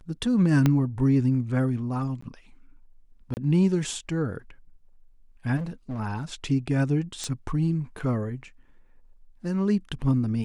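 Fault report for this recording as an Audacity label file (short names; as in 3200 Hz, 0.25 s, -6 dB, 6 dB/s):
0.660000	0.660000	pop -9 dBFS
2.210000	2.220000	gap 14 ms
3.340000	3.370000	gap 29 ms
5.560000	6.000000	clipped -28 dBFS
7.240000	7.240000	pop -18 dBFS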